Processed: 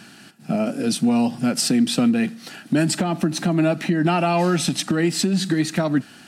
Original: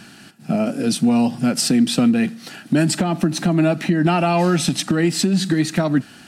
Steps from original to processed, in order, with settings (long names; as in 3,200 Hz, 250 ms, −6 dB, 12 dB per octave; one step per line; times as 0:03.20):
low-shelf EQ 65 Hz −11.5 dB
level −1.5 dB